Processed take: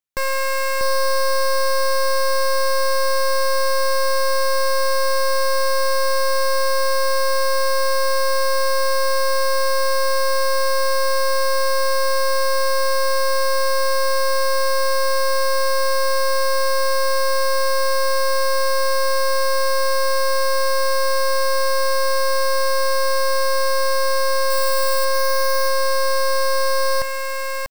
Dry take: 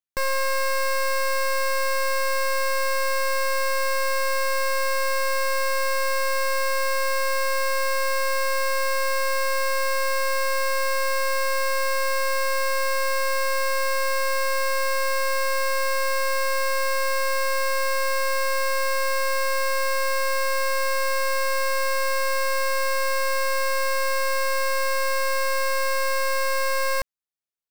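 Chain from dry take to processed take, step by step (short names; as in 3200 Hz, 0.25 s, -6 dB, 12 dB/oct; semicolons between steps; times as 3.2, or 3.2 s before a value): 24.5–25.05 high shelf 11000 Hz +9.5 dB; on a send: echo 0.642 s -4 dB; on the sum: gain +2.5 dB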